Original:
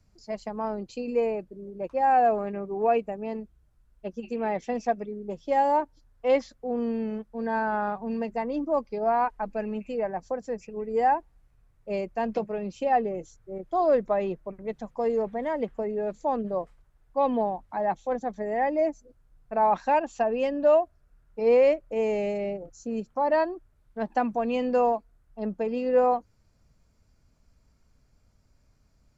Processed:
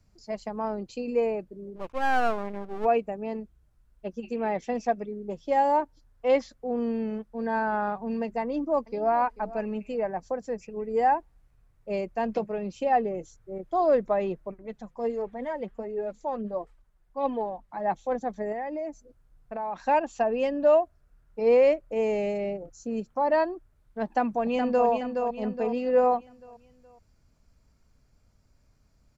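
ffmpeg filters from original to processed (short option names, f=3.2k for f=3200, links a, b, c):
-filter_complex "[0:a]asplit=3[a][b][c];[a]afade=t=out:st=1.75:d=0.02[d];[b]aeval=exprs='max(val(0),0)':c=same,afade=t=in:st=1.75:d=0.02,afade=t=out:st=2.84:d=0.02[e];[c]afade=t=in:st=2.84:d=0.02[f];[d][e][f]amix=inputs=3:normalize=0,asplit=2[g][h];[h]afade=t=in:st=8.42:d=0.01,afade=t=out:st=9.16:d=0.01,aecho=0:1:440|880:0.125893|0.0188839[i];[g][i]amix=inputs=2:normalize=0,asettb=1/sr,asplit=3[j][k][l];[j]atrim=end=14.544[m];[k]atrim=start=14.54:end=17.86,asetpts=PTS-STARTPTS,afade=t=in:d=0.004:c=qsin,afade=t=out:st=3.316:d=0.004:c=qsin,flanger=delay=2.1:depth=3.9:regen=35:speed=1.4:shape=triangular[n];[l]atrim=start=17.856[o];[m][n]acrossfade=d=0.004:c1=hsin:c2=qsin[p];[p][o]acrossfade=d=0.004:c1=qsin:c2=hsin,asettb=1/sr,asplit=3[q][r][s];[q]atrim=end=18.524[t];[r]atrim=start=18.52:end=19.88,asetpts=PTS-STARTPTS,afade=t=in:d=0.004:c=qsin,afade=t=out:st=1.356:d=0.004:c=qsin,acompressor=threshold=-31dB:ratio=4:attack=3.2:release=140:knee=1:detection=peak[u];[s]atrim=start=19.876[v];[t][u]acrossfade=d=0.004:c1=hsin:c2=qsin[w];[w][v]acrossfade=d=0.004:c1=qsin:c2=hsin,asplit=2[x][y];[y]afade=t=in:st=24.04:d=0.01,afade=t=out:st=24.88:d=0.01,aecho=0:1:420|840|1260|1680|2100:0.530884|0.238898|0.107504|0.0483768|0.0217696[z];[x][z]amix=inputs=2:normalize=0"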